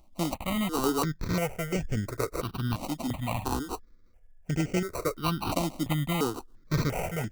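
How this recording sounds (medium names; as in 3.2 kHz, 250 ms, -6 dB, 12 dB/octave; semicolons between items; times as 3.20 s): aliases and images of a low sample rate 1.7 kHz, jitter 0%; notches that jump at a steady rate 2.9 Hz 430–3900 Hz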